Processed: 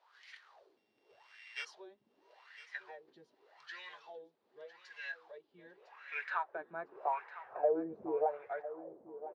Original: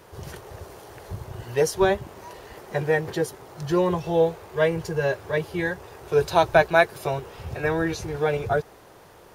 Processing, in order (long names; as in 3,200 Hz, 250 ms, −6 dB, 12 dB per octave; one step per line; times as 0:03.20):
0:00.77–0:01.65: samples sorted by size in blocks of 16 samples
LFO wah 0.85 Hz 220–2,100 Hz, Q 6.2
downward compressor 3 to 1, threshold −37 dBFS, peak gain reduction 12.5 dB
band-pass filter sweep 4,100 Hz → 590 Hz, 0:05.39–0:07.74
on a send: repeating echo 1,005 ms, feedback 15%, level −14 dB
on the sum: level +11 dB